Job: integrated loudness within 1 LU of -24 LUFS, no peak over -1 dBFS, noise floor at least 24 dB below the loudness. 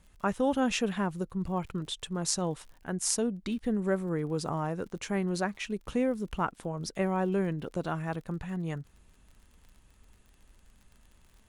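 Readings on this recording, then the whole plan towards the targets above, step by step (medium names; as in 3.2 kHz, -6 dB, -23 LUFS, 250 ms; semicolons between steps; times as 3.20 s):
tick rate 51 per s; loudness -32.0 LUFS; peak level -9.5 dBFS; loudness target -24.0 LUFS
-> de-click; trim +8 dB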